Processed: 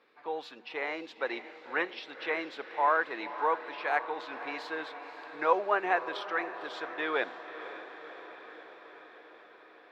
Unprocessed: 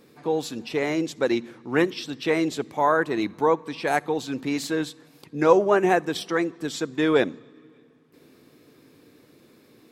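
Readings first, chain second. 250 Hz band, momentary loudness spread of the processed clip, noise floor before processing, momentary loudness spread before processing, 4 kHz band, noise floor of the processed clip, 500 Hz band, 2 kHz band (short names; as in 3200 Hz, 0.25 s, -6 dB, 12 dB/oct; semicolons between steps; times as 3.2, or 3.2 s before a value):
-18.0 dB, 19 LU, -56 dBFS, 9 LU, -9.0 dB, -56 dBFS, -11.0 dB, -3.0 dB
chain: HPF 880 Hz 12 dB/oct; air absorption 360 m; on a send: diffused feedback echo 0.533 s, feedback 68%, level -12.5 dB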